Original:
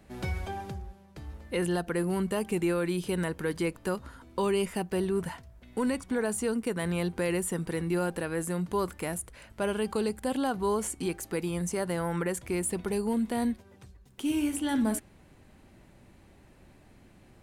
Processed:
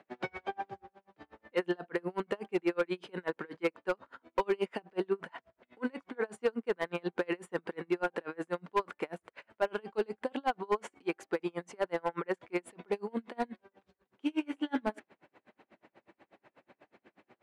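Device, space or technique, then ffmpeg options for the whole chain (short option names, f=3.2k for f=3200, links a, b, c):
helicopter radio: -af "highpass=400,lowpass=2.5k,aeval=exprs='val(0)*pow(10,-36*(0.5-0.5*cos(2*PI*8.2*n/s))/20)':c=same,asoftclip=type=hard:threshold=-28.5dB,volume=7dB"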